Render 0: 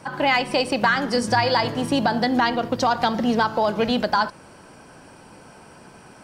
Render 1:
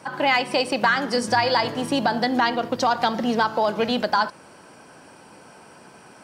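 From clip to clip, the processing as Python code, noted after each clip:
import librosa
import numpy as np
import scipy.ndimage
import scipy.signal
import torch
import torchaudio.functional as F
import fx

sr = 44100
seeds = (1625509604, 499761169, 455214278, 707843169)

y = fx.highpass(x, sr, hz=210.0, slope=6)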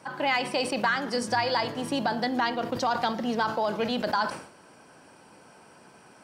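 y = fx.sustainer(x, sr, db_per_s=97.0)
y = y * 10.0 ** (-6.0 / 20.0)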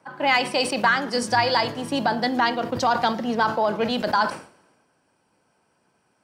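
y = fx.band_widen(x, sr, depth_pct=70)
y = y * 10.0 ** (5.0 / 20.0)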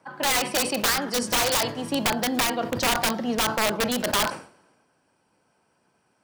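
y = (np.mod(10.0 ** (15.0 / 20.0) * x + 1.0, 2.0) - 1.0) / 10.0 ** (15.0 / 20.0)
y = y * 10.0 ** (-1.0 / 20.0)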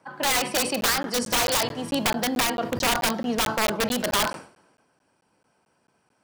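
y = fx.buffer_crackle(x, sr, first_s=0.81, period_s=0.22, block=512, kind='zero')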